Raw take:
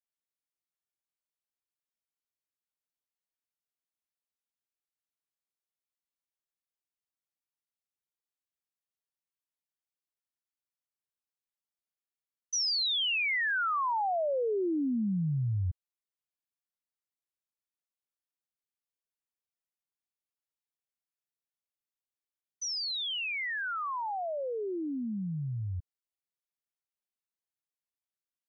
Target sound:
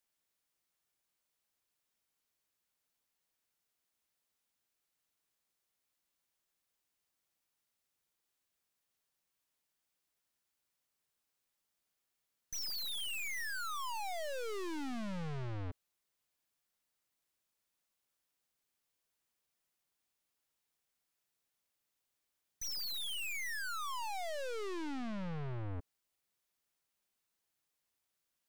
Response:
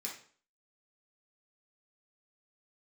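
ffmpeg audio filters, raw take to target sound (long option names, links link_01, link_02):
-af "aeval=exprs='(tanh(562*val(0)+0.8)-tanh(0.8))/562':channel_layout=same,volume=14.5dB"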